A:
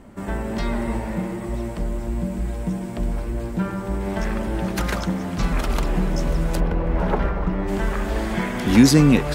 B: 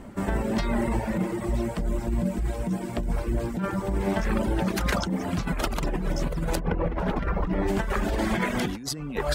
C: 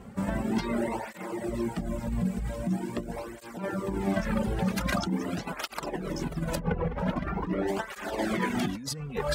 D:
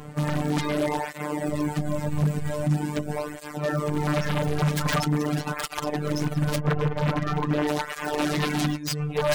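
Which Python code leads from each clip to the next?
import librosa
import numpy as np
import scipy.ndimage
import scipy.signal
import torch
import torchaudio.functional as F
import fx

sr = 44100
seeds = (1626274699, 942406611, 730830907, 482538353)

y1 = fx.dereverb_blind(x, sr, rt60_s=0.81)
y1 = fx.over_compress(y1, sr, threshold_db=-26.0, ratio=-1.0)
y2 = fx.flanger_cancel(y1, sr, hz=0.44, depth_ms=3.4)
y3 = fx.robotise(y2, sr, hz=149.0)
y3 = 10.0 ** (-23.5 / 20.0) * (np.abs((y3 / 10.0 ** (-23.5 / 20.0) + 3.0) % 4.0 - 2.0) - 1.0)
y3 = y3 * librosa.db_to_amplitude(9.0)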